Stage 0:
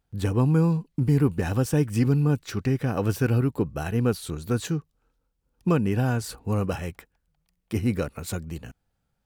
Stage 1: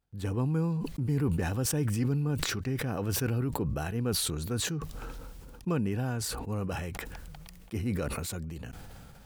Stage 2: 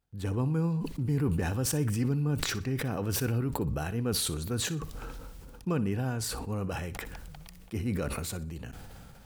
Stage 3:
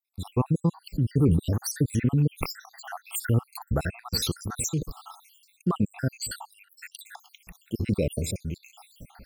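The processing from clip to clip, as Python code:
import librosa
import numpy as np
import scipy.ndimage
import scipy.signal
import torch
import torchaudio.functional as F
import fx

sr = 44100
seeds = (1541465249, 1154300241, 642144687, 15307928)

y1 = fx.sustainer(x, sr, db_per_s=20.0)
y1 = y1 * librosa.db_to_amplitude(-8.5)
y2 = fx.echo_feedback(y1, sr, ms=61, feedback_pct=32, wet_db=-16.5)
y3 = fx.spec_dropout(y2, sr, seeds[0], share_pct=77)
y3 = y3 * librosa.db_to_amplitude(8.0)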